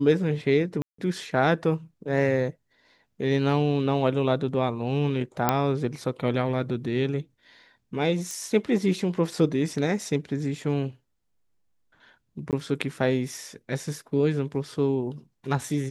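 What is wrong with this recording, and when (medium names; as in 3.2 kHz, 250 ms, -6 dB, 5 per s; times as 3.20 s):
0.82–0.98 s: dropout 164 ms
5.49 s: pop -6 dBFS
8.31 s: pop
12.51–12.53 s: dropout 18 ms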